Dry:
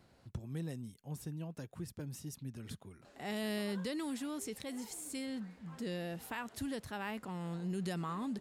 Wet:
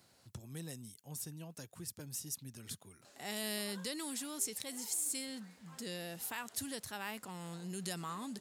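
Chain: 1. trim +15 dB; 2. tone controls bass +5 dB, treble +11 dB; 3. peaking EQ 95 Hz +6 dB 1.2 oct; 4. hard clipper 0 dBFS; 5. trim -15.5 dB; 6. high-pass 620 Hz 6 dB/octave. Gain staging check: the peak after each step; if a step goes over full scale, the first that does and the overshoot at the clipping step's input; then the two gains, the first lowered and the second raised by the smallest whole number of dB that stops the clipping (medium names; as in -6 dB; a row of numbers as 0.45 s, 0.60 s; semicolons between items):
-14.0 dBFS, -4.5 dBFS, -5.0 dBFS, -5.0 dBFS, -20.5 dBFS, -19.5 dBFS; nothing clips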